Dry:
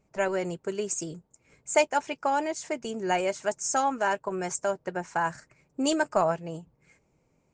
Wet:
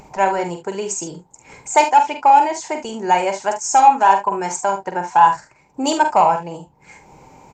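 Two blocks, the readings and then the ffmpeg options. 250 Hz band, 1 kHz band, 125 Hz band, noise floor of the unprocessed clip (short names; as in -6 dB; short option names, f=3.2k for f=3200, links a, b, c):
+5.5 dB, +16.5 dB, n/a, -70 dBFS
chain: -filter_complex "[0:a]superequalizer=9b=3.55:16b=0.251,acontrast=70,lowshelf=f=240:g=-4.5,aresample=32000,aresample=44100,acompressor=mode=upward:threshold=-30dB:ratio=2.5,asplit=2[a][b];[b]aecho=0:1:46|72:0.447|0.224[c];[a][c]amix=inputs=2:normalize=0"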